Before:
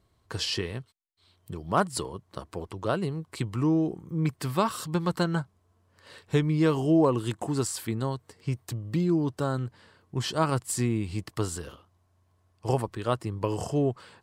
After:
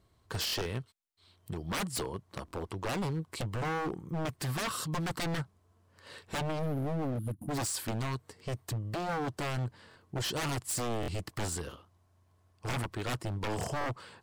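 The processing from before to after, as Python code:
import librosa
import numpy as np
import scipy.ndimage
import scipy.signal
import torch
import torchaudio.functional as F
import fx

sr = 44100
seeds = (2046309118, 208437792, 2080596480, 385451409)

y = fx.spec_box(x, sr, start_s=6.59, length_s=0.92, low_hz=310.0, high_hz=9500.0, gain_db=-26)
y = 10.0 ** (-28.0 / 20.0) * (np.abs((y / 10.0 ** (-28.0 / 20.0) + 3.0) % 4.0 - 2.0) - 1.0)
y = fx.buffer_glitch(y, sr, at_s=(0.46, 2.46, 9.89, 11.01, 13.79), block=1024, repeats=2)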